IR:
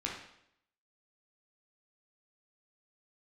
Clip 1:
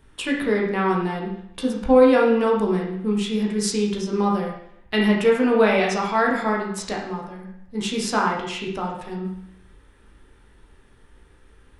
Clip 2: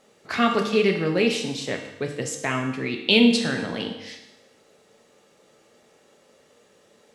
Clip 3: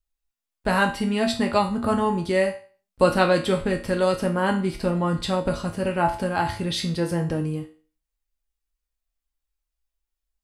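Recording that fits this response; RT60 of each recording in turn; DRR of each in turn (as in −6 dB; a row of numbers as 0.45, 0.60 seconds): 1; 0.75, 0.95, 0.40 seconds; −3.0, 2.5, 1.5 decibels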